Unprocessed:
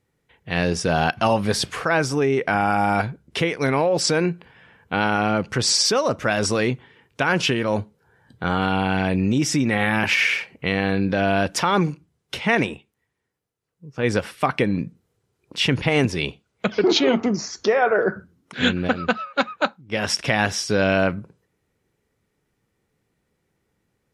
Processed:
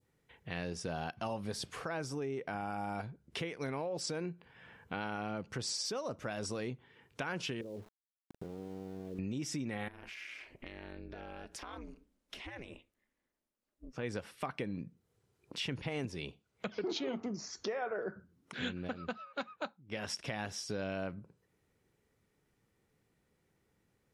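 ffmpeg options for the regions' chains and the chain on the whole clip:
-filter_complex "[0:a]asettb=1/sr,asplit=3[a][b][c];[a]atrim=end=7.614[d];[b]atrim=start=7.61:end=9.19,asetpts=PTS-STARTPTS,afade=t=in:d=0.004:c=qsin,afade=t=out:st=1.576:d=0.004:c=qsin,acompressor=threshold=-33dB:ratio=3:attack=3.2:release=140:knee=1:detection=peak,lowpass=f=420:t=q:w=3.4,aeval=exprs='val(0)*gte(abs(val(0)),0.00708)':c=same[e];[c]atrim=start=9.186[f];[d][e]acrossfade=d=0.004:c1=hsin:c2=qsin[g];[g][f]acrossfade=d=0.004:c1=qsin:c2=hsin,asettb=1/sr,asplit=3[h][i][j];[h]atrim=end=9.884[k];[i]atrim=start=9.88:end=13.93,asetpts=PTS-STARTPTS,afade=t=in:d=0.004:c=qsin,afade=t=out:st=4.046:d=0.004:c=qsin,acompressor=threshold=-33dB:ratio=4:attack=3.2:release=140:knee=1:detection=peak,highpass=55,aeval=exprs='val(0)*sin(2*PI*120*n/s)':c=same[l];[j]atrim=start=13.926[m];[k][l]acrossfade=d=0.004:c1=hsin:c2=qsin[n];[n][m]acrossfade=d=0.004:c1=qsin:c2=hsin,adynamicequalizer=threshold=0.0158:dfrequency=1900:dqfactor=0.8:tfrequency=1900:tqfactor=0.8:attack=5:release=100:ratio=0.375:range=2.5:mode=cutabove:tftype=bell,acompressor=threshold=-43dB:ratio=2,volume=-4dB"

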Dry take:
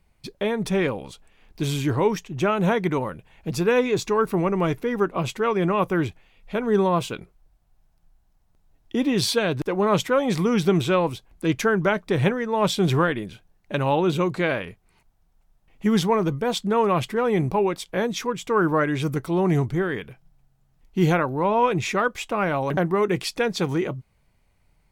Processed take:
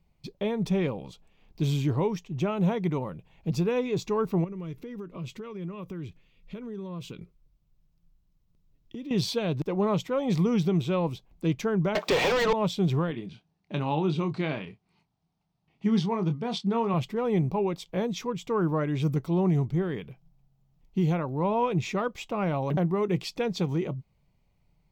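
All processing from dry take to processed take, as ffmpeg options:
-filter_complex "[0:a]asettb=1/sr,asplit=3[a][b][c];[a]atrim=end=4.444[d];[b]atrim=start=4.44:end=9.11,asetpts=PTS-STARTPTS,afade=t=in:d=0.004:c=qsin,afade=t=out:st=4.666:d=0.004:c=qsin,equalizer=f=770:w=2.5:g=-13.5,acompressor=threshold=-32dB:ratio=5:attack=3.2:release=140:knee=1:detection=peak[e];[c]atrim=start=9.106[f];[d][e]acrossfade=d=0.004:c1=hsin:c2=qsin[g];[g][f]acrossfade=d=0.004:c1=qsin:c2=hsin,asettb=1/sr,asplit=3[h][i][j];[h]atrim=end=11.954[k];[i]atrim=start=11.95:end=12.53,asetpts=PTS-STARTPTS,afade=t=in:d=0.004:c=qsin,afade=t=out:st=0.576:d=0.004:c=qsin,highpass=510,asplit=2[l][m];[m]highpass=f=720:p=1,volume=39dB,asoftclip=type=tanh:threshold=-7.5dB[n];[l][n]amix=inputs=2:normalize=0,lowpass=f=3.7k:p=1,volume=-6dB[o];[j]atrim=start=12.526[p];[k][o]acrossfade=d=0.004:c1=hsin:c2=qsin[q];[q][p]acrossfade=d=0.004:c1=qsin:c2=hsin,asettb=1/sr,asplit=3[r][s][t];[r]atrim=end=13.114[u];[s]atrim=start=13.11:end=16.94,asetpts=PTS-STARTPTS,afade=t=in:d=0.004:c=qsin,afade=t=out:st=3.826:d=0.004:c=qsin,highpass=120,equalizer=f=530:t=q:w=4:g=-9,equalizer=f=4.6k:t=q:w=4:g=3,equalizer=f=7.2k:t=q:w=4:g=-8,lowpass=f=9.3k:w=0.5412,lowpass=f=9.3k:w=1.3066,asplit=2[v][w];[w]adelay=26,volume=-8.5dB[x];[v][x]amix=inputs=2:normalize=0,atrim=end_sample=168903[y];[t]atrim=start=16.936[z];[u][y]acrossfade=d=0.004:c1=hsin:c2=qsin[aa];[aa][z]acrossfade=d=0.004:c1=qsin:c2=hsin,equalizer=f=160:t=o:w=0.67:g=7,equalizer=f=1.6k:t=o:w=0.67:g=-9,equalizer=f=10k:t=o:w=0.67:g=-12,alimiter=limit=-11.5dB:level=0:latency=1:release=398,volume=-5dB"

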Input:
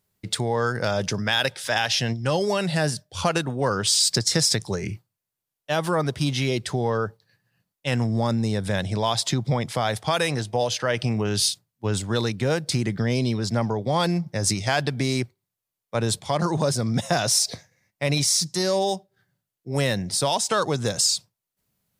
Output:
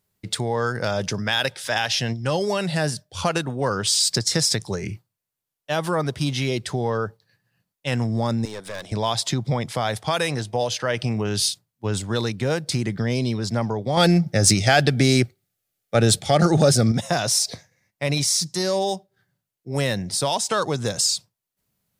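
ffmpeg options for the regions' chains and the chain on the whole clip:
-filter_complex "[0:a]asettb=1/sr,asplit=3[a][b][c];[a]atrim=end=8.454[d];[b]atrim=start=8.45:end=8.92,asetpts=PTS-STARTPTS,afade=t=in:d=0.004:c=qsin,afade=t=out:st=0.466:d=0.004:c=qsin,highpass=360,aeval=exprs='(tanh(22.4*val(0)+0.5)-tanh(0.5))/22.4':c=same[e];[c]atrim=start=8.916[f];[d][e]acrossfade=d=0.004:c1=hsin:c2=qsin[g];[g][f]acrossfade=d=0.004:c1=qsin:c2=hsin,asettb=1/sr,asplit=3[h][i][j];[h]atrim=end=13.974[k];[i]atrim=start=13.97:end=16.92,asetpts=PTS-STARTPTS,afade=t=in:d=0.004:c=qsin,afade=t=out:st=2.946:d=0.004:c=qsin,asuperstop=centerf=1000:order=4:qfactor=3.4,acontrast=87[l];[j]atrim=start=16.916[m];[k][l]acrossfade=d=0.004:c1=hsin:c2=qsin[n];[n][m]acrossfade=d=0.004:c1=qsin:c2=hsin"

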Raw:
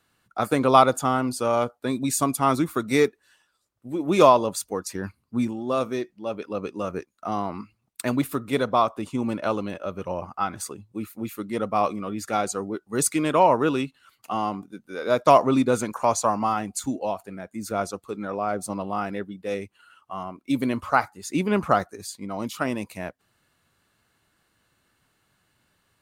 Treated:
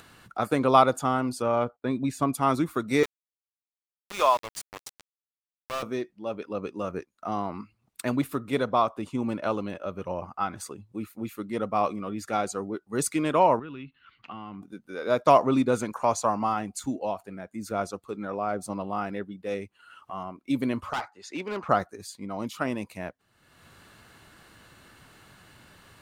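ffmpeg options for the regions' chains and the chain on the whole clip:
-filter_complex "[0:a]asettb=1/sr,asplit=3[a][b][c];[a]atrim=end=1.424[d];[b]atrim=start=1.42:end=2.33,asetpts=PTS-STARTPTS,afade=t=in:d=0.004:c=qsin,afade=t=out:st=0.906:d=0.004:c=qsin,agate=range=-18dB:threshold=-56dB:ratio=16:release=100:detection=peak,bass=f=250:g=2,treble=f=4k:g=-12[e];[c]atrim=start=2.326[f];[d][e]acrossfade=d=0.004:c1=hsin:c2=qsin[g];[g][f]acrossfade=d=0.004:c1=qsin:c2=hsin,asettb=1/sr,asplit=3[h][i][j];[h]atrim=end=3.034[k];[i]atrim=start=3.03:end=5.83,asetpts=PTS-STARTPTS,afade=t=in:d=0.004:c=qsin,afade=t=out:st=2.796:d=0.004:c=qsin,highpass=820,aeval=exprs='val(0)*gte(abs(val(0)),0.0422)':c=same[l];[j]atrim=start=5.826[m];[k][l]acrossfade=d=0.004:c1=hsin:c2=qsin[n];[n][m]acrossfade=d=0.004:c1=qsin:c2=hsin,asettb=1/sr,asplit=3[o][p][q];[o]atrim=end=13.594[r];[p]atrim=start=13.59:end=14.62,asetpts=PTS-STARTPTS,afade=t=in:d=0.004:c=qsin,afade=t=out:st=1.026:d=0.004:c=qsin,lowpass=f=3.2k:w=0.5412,lowpass=f=3.2k:w=1.3066,equalizer=f=610:w=0.86:g=-13,acompressor=threshold=-33dB:ratio=6:attack=3.2:release=140:knee=1:detection=peak[s];[q]atrim=start=14.616[t];[r][s]acrossfade=d=0.004:c1=hsin:c2=qsin[u];[u][t]acrossfade=d=0.004:c1=qsin:c2=hsin,asettb=1/sr,asplit=3[v][w][x];[v]atrim=end=20.934[y];[w]atrim=start=20.93:end=21.69,asetpts=PTS-STARTPTS,afade=t=in:d=0.004:c=qsin,afade=t=out:st=0.756:d=0.004:c=qsin,acrossover=split=370 6300:gain=0.158 1 0.0794[z][aa][ab];[z][aa][ab]amix=inputs=3:normalize=0,asoftclip=type=hard:threshold=-24dB[ac];[x]atrim=start=21.686[ad];[y][ac]acrossfade=d=0.004:c1=hsin:c2=qsin[ae];[ae][ad]acrossfade=d=0.004:c1=qsin:c2=hsin,highshelf=f=5.8k:g=-5.5,acompressor=mode=upward:threshold=-35dB:ratio=2.5,volume=-2.5dB"

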